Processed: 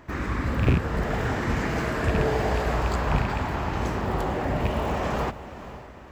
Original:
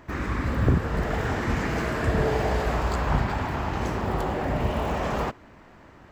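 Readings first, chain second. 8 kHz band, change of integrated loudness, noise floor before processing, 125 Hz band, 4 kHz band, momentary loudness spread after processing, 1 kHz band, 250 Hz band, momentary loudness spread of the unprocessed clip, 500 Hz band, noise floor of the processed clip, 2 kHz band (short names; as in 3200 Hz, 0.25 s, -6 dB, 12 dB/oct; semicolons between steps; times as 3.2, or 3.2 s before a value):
+0.5 dB, 0.0 dB, -50 dBFS, 0.0 dB, +0.5 dB, 7 LU, 0.0 dB, 0.0 dB, 5 LU, 0.0 dB, -43 dBFS, +0.5 dB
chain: rattling part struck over -19 dBFS, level -21 dBFS; diffused feedback echo 0.496 s, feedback 42%, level -14 dB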